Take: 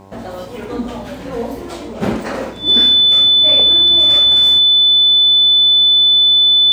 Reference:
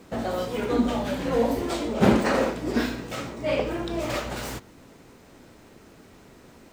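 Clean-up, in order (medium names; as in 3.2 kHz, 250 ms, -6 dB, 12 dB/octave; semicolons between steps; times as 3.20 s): de-hum 97.1 Hz, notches 11; band-stop 3.5 kHz, Q 30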